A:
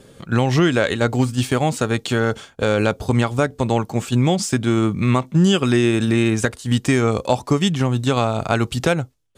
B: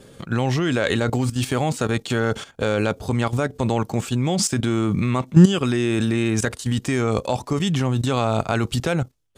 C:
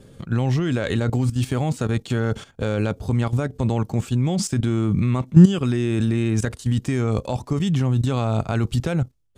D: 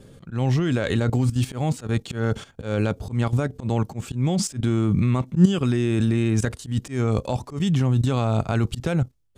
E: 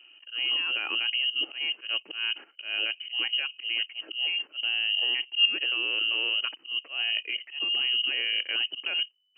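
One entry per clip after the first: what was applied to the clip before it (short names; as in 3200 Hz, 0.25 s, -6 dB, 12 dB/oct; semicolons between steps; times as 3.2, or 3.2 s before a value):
level quantiser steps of 13 dB; gain +5.5 dB
low shelf 240 Hz +11 dB; gain -6 dB
auto swell 0.122 s
inverted band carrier 3000 Hz; ladder high-pass 270 Hz, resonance 50%; gain +2 dB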